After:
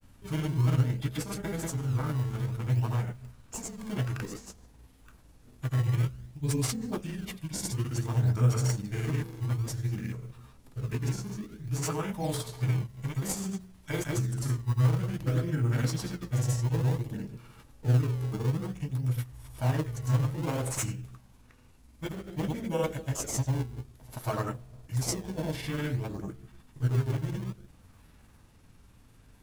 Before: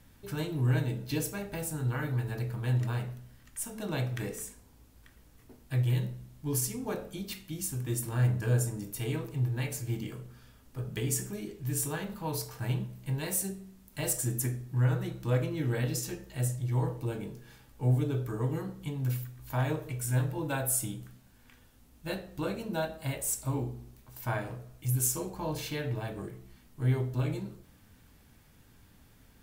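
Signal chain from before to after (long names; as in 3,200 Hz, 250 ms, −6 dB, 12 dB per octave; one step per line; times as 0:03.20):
granular cloud, pitch spread up and down by 0 semitones
in parallel at −5 dB: sample-and-hold swept by an LFO 20×, swing 160% 0.56 Hz
on the sum: formants moved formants −4 semitones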